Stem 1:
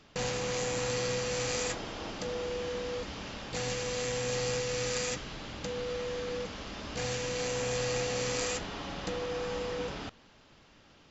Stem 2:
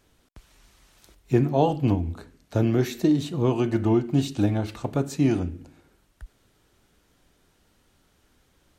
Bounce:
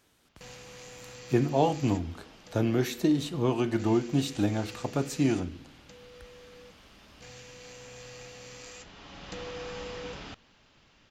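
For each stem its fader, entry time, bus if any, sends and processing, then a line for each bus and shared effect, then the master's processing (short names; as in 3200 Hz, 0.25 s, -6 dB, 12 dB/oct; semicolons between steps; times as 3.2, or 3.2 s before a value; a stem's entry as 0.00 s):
-2.0 dB, 0.25 s, no send, bell 2600 Hz +2 dB; auto duck -11 dB, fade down 0.45 s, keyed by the second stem
0.0 dB, 0.00 s, no send, HPF 190 Hz 6 dB/oct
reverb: off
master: bell 450 Hz -3 dB 2.4 oct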